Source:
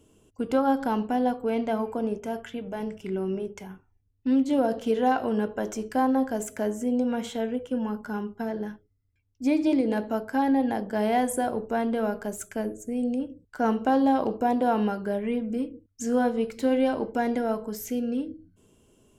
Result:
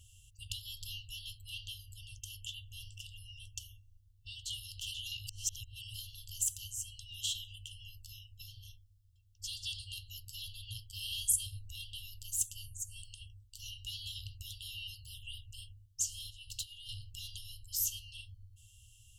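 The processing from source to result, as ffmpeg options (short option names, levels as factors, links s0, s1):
-filter_complex "[0:a]asettb=1/sr,asplit=3[s0][s1][s2];[s0]atrim=end=16.304[s3];[s1]atrim=start=16.3:end=16.89,asetpts=PTS-STARTPTS,afade=t=in:d=0.004:c=qsin,afade=t=out:st=0.586:d=0.004:c=qsin,acompressor=threshold=0.0316:ratio=6:attack=3.2:release=140:knee=1:detection=peak[s4];[s2]atrim=start=16.886[s5];[s3][s4]acrossfade=d=0.004:c1=hsin:c2=qsin[s6];[s6][s5]acrossfade=d=0.004:c1=qsin:c2=hsin,asplit=3[s7][s8][s9];[s7]atrim=end=5.272[s10];[s8]atrim=start=5.268:end=5.942,asetpts=PTS-STARTPTS,areverse[s11];[s9]atrim=start=5.938[s12];[s10][s11]acrossfade=d=0.004:c1=hsin:c2=hsin[s13];[s13][s12]acrossfade=d=0.004:c1=hsin:c2=hsin,afftfilt=real='re*(1-between(b*sr/4096,120,2700))':imag='im*(1-between(b*sr/4096,120,2700))':win_size=4096:overlap=0.75,volume=2"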